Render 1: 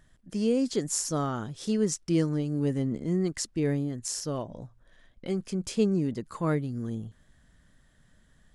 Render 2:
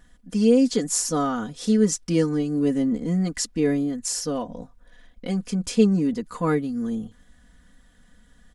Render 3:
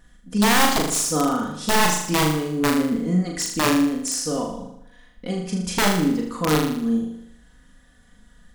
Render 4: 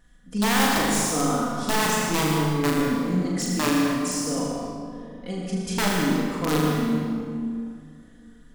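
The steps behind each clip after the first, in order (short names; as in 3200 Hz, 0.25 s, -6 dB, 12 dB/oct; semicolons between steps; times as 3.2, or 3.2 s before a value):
comb 4.1 ms, depth 85%; gain +3.5 dB
wrapped overs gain 14.5 dB; on a send: flutter echo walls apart 6.7 m, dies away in 0.7 s
reverb RT60 2.3 s, pre-delay 86 ms, DRR 0.5 dB; gain -5 dB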